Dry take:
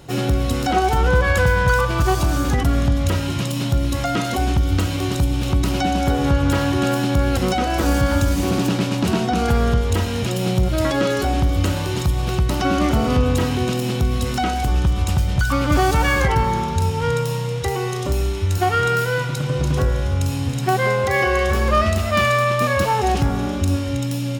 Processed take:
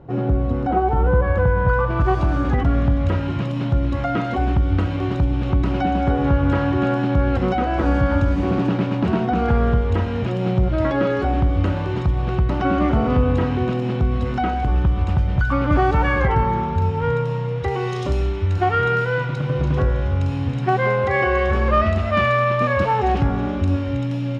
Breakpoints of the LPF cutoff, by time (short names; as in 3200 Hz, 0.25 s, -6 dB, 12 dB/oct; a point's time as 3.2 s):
1.54 s 1000 Hz
2.18 s 1900 Hz
17.56 s 1900 Hz
18.03 s 4600 Hz
18.35 s 2400 Hz